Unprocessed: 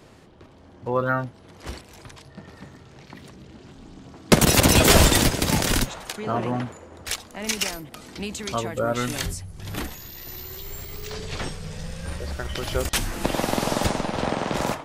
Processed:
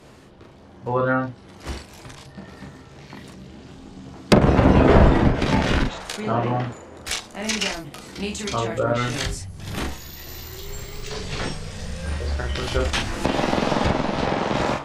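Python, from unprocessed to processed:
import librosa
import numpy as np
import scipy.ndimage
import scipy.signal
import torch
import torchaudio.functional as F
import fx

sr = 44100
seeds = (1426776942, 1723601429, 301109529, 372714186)

y = fx.room_early_taps(x, sr, ms=(15, 42), db=(-6.0, -3.5))
y = fx.env_lowpass_down(y, sr, base_hz=1300.0, full_db=-12.5)
y = y * 10.0 ** (1.0 / 20.0)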